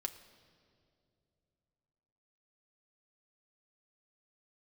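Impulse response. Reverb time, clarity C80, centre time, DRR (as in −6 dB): non-exponential decay, 14.0 dB, 12 ms, 5.5 dB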